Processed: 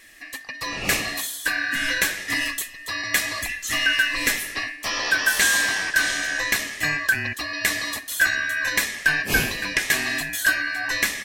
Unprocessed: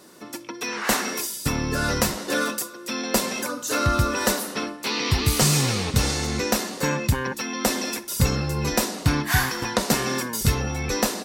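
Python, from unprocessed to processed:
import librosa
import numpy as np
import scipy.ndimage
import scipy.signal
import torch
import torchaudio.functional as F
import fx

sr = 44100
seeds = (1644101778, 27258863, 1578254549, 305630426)

y = fx.band_shuffle(x, sr, order='2143')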